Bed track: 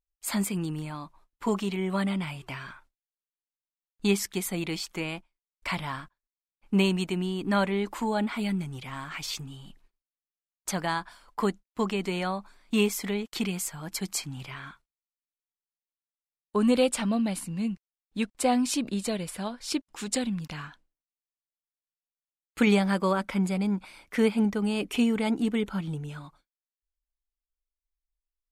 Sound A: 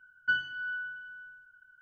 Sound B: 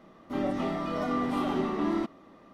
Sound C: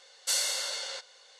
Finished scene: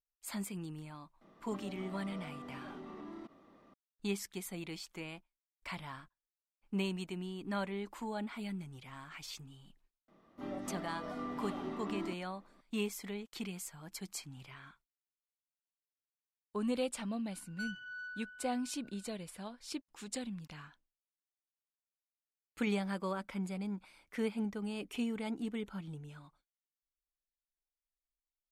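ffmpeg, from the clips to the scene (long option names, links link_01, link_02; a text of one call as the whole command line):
ffmpeg -i bed.wav -i cue0.wav -i cue1.wav -filter_complex "[2:a]asplit=2[link_01][link_02];[0:a]volume=-12dB[link_03];[link_01]acompressor=threshold=-36dB:ratio=6:attack=3.2:release=140:knee=1:detection=peak[link_04];[1:a]asoftclip=type=tanh:threshold=-31dB[link_05];[link_04]atrim=end=2.53,asetpts=PTS-STARTPTS,volume=-8.5dB,afade=type=in:duration=0.004:curve=hsin,afade=type=out:start_time=2.526:duration=0.004:curve=hsin,adelay=1210[link_06];[link_02]atrim=end=2.53,asetpts=PTS-STARTPTS,volume=-12dB,afade=type=in:duration=0.004:curve=hsin,afade=type=out:start_time=2.526:duration=0.004:curve=hsin,adelay=10080[link_07];[link_05]atrim=end=1.81,asetpts=PTS-STARTPTS,volume=-8dB,afade=type=in:duration=0.004:curve=hsin,afade=type=out:start_time=1.806:duration=0.004:curve=hsin,adelay=17310[link_08];[link_03][link_06][link_07][link_08]amix=inputs=4:normalize=0" out.wav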